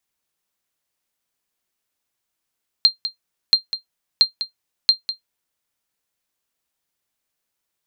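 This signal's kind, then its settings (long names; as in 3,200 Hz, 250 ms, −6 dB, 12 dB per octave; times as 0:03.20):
ping with an echo 4,180 Hz, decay 0.12 s, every 0.68 s, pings 4, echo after 0.20 s, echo −12 dB −3.5 dBFS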